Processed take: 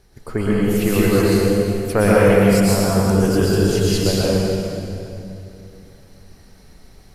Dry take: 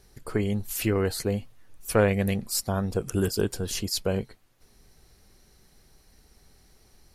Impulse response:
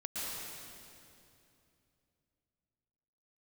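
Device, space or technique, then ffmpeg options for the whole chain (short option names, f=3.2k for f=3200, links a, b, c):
swimming-pool hall: -filter_complex "[1:a]atrim=start_sample=2205[a];[0:a][a]afir=irnorm=-1:irlink=0,highshelf=f=4.3k:g=-7,volume=8.5dB"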